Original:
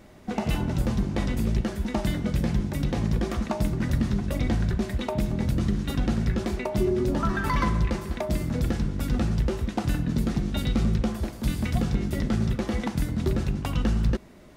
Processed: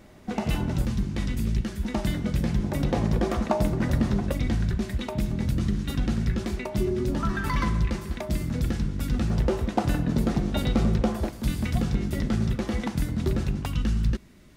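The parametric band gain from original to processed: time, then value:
parametric band 650 Hz 1.9 octaves
−1 dB
from 0:00.85 −10 dB
from 0:01.83 −2 dB
from 0:02.63 +6.5 dB
from 0:04.32 −5 dB
from 0:09.30 +6.5 dB
from 0:11.29 −1.5 dB
from 0:13.66 −10.5 dB

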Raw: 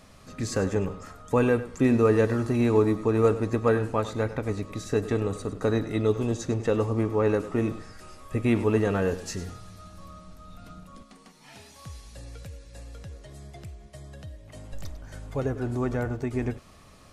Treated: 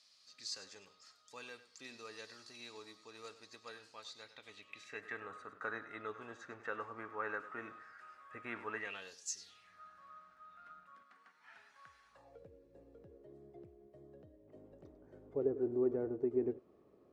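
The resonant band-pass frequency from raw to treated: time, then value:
resonant band-pass, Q 4
0:04.20 4,600 Hz
0:05.31 1,500 Hz
0:08.72 1,500 Hz
0:09.28 7,200 Hz
0:09.77 1,500 Hz
0:12.07 1,500 Hz
0:12.48 380 Hz

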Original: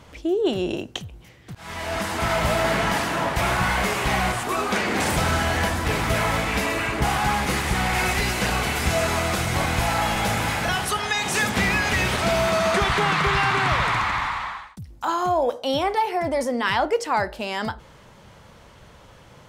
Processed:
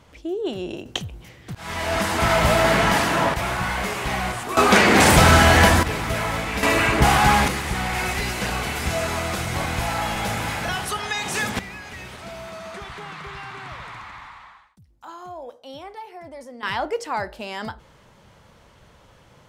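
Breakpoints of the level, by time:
−5 dB
from 0:00.86 +4 dB
from 0:03.34 −3 dB
from 0:04.57 +9 dB
from 0:05.83 −2.5 dB
from 0:06.63 +6 dB
from 0:07.48 −2.5 dB
from 0:11.59 −15.5 dB
from 0:16.63 −4 dB

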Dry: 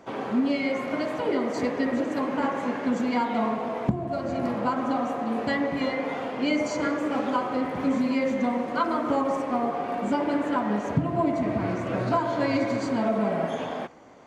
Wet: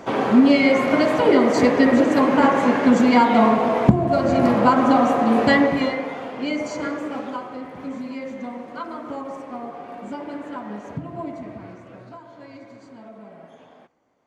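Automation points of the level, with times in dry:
0:05.58 +10.5 dB
0:06.13 −0.5 dB
0:06.96 −0.5 dB
0:07.59 −7 dB
0:11.28 −7 dB
0:12.17 −17.5 dB

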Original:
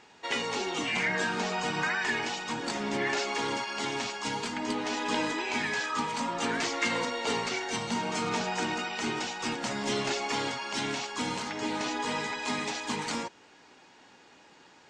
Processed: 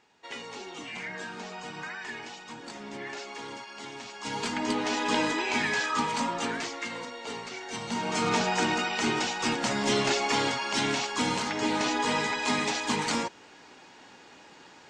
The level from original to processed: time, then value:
0:04.05 −9 dB
0:04.46 +3 dB
0:06.22 +3 dB
0:06.88 −7.5 dB
0:07.52 −7.5 dB
0:08.27 +4.5 dB

